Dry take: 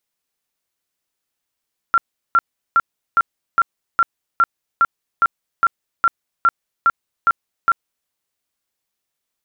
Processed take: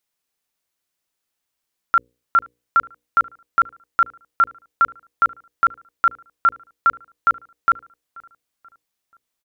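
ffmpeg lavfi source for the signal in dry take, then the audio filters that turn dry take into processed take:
-f lavfi -i "aevalsrc='0.335*sin(2*PI*1370*mod(t,0.41))*lt(mod(t,0.41),53/1370)':d=6.15:s=44100"
-filter_complex "[0:a]bandreject=f=60:t=h:w=6,bandreject=f=120:t=h:w=6,bandreject=f=180:t=h:w=6,bandreject=f=240:t=h:w=6,bandreject=f=300:t=h:w=6,bandreject=f=360:t=h:w=6,bandreject=f=420:t=h:w=6,bandreject=f=480:t=h:w=6,bandreject=f=540:t=h:w=6,asplit=2[s0][s1];[s1]adelay=483,lowpass=f=2000:p=1,volume=0.0708,asplit=2[s2][s3];[s3]adelay=483,lowpass=f=2000:p=1,volume=0.51,asplit=2[s4][s5];[s5]adelay=483,lowpass=f=2000:p=1,volume=0.51[s6];[s0][s2][s4][s6]amix=inputs=4:normalize=0"

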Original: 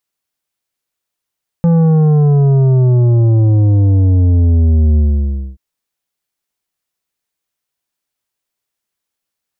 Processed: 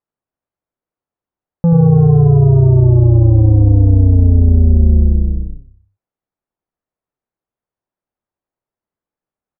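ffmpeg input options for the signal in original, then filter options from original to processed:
-f lavfi -i "aevalsrc='0.398*clip((3.93-t)/0.6,0,1)*tanh(2.82*sin(2*PI*170*3.93/log(65/170)*(exp(log(65/170)*t/3.93)-1)))/tanh(2.82)':d=3.93:s=44100"
-filter_complex "[0:a]lowpass=1000,asplit=2[s0][s1];[s1]asplit=5[s2][s3][s4][s5][s6];[s2]adelay=80,afreqshift=-33,volume=0.531[s7];[s3]adelay=160,afreqshift=-66,volume=0.224[s8];[s4]adelay=240,afreqshift=-99,volume=0.0933[s9];[s5]adelay=320,afreqshift=-132,volume=0.0394[s10];[s6]adelay=400,afreqshift=-165,volume=0.0166[s11];[s7][s8][s9][s10][s11]amix=inputs=5:normalize=0[s12];[s0][s12]amix=inputs=2:normalize=0"

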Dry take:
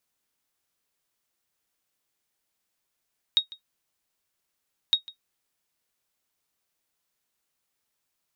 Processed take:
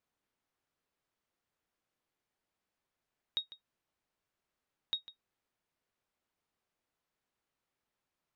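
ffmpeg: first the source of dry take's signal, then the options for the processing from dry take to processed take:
-f lavfi -i "aevalsrc='0.282*(sin(2*PI*3760*mod(t,1.56))*exp(-6.91*mod(t,1.56)/0.11)+0.0891*sin(2*PI*3760*max(mod(t,1.56)-0.15,0))*exp(-6.91*max(mod(t,1.56)-0.15,0)/0.11))':d=3.12:s=44100"
-af "lowpass=f=1500:p=1,alimiter=limit=0.075:level=0:latency=1:release=37"

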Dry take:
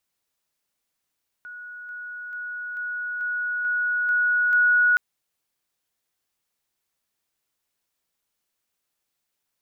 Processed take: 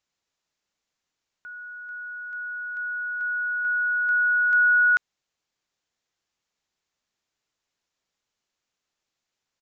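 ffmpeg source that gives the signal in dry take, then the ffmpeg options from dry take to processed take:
-f lavfi -i "aevalsrc='pow(10,(-36+3*floor(t/0.44))/20)*sin(2*PI*1460*t)':d=3.52:s=44100"
-af "aresample=16000,aresample=44100"

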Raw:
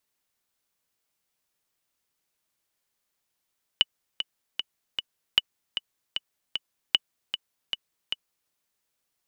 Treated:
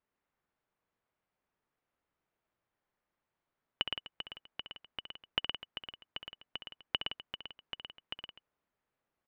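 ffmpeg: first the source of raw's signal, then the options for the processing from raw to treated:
-f lavfi -i "aevalsrc='pow(10,(-5-9.5*gte(mod(t,4*60/153),60/153))/20)*sin(2*PI*2960*mod(t,60/153))*exp(-6.91*mod(t,60/153)/0.03)':d=4.7:s=44100"
-af "lowpass=1600,aecho=1:1:66|116|167|251:0.335|0.531|0.282|0.141"

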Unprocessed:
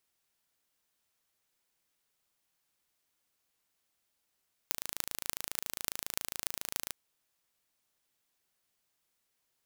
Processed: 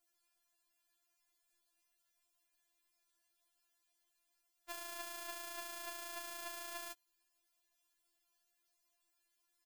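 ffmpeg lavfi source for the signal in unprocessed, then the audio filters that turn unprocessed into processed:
-f lavfi -i "aevalsrc='0.708*eq(mod(n,1615),0)*(0.5+0.5*eq(mod(n,12920),0))':d=2.2:s=44100"
-filter_complex "[0:a]aecho=1:1:7:0.43,acrossover=split=710[s0][s1];[s1]asoftclip=type=hard:threshold=0.0841[s2];[s0][s2]amix=inputs=2:normalize=0,afftfilt=real='re*4*eq(mod(b,16),0)':imag='im*4*eq(mod(b,16),0)':win_size=2048:overlap=0.75"

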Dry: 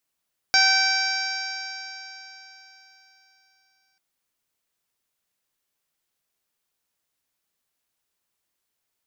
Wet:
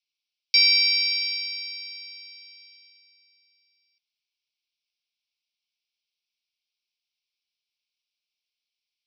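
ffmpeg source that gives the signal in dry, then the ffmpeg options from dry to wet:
-f lavfi -i "aevalsrc='0.0631*pow(10,-3*t/3.77)*sin(2*PI*768.5*t)+0.112*pow(10,-3*t/3.77)*sin(2*PI*1539.99*t)+0.0794*pow(10,-3*t/3.77)*sin(2*PI*2317.44*t)+0.0112*pow(10,-3*t/3.77)*sin(2*PI*3103.78*t)+0.0282*pow(10,-3*t/3.77)*sin(2*PI*3901.9*t)+0.112*pow(10,-3*t/3.77)*sin(2*PI*4714.59*t)+0.0944*pow(10,-3*t/3.77)*sin(2*PI*5544.58*t)+0.0355*pow(10,-3*t/3.77)*sin(2*PI*6394.48*t)+0.00944*pow(10,-3*t/3.77)*sin(2*PI*7266.81*t)':d=3.44:s=44100"
-filter_complex "[0:a]asplit=2[s0][s1];[s1]acrusher=bits=5:dc=4:mix=0:aa=0.000001,volume=0.422[s2];[s0][s2]amix=inputs=2:normalize=0,asuperpass=centerf=3600:order=20:qfactor=1"

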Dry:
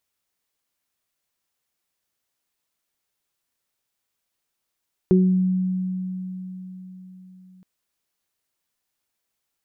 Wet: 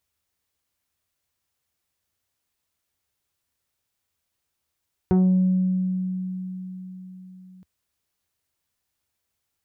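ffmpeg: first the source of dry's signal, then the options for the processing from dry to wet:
-f lavfi -i "aevalsrc='0.224*pow(10,-3*t/4.39)*sin(2*PI*185*t)+0.224*pow(10,-3*t/0.44)*sin(2*PI*370*t)':d=2.52:s=44100"
-af "asoftclip=type=tanh:threshold=0.158,equalizer=f=79:t=o:w=1.1:g=13"

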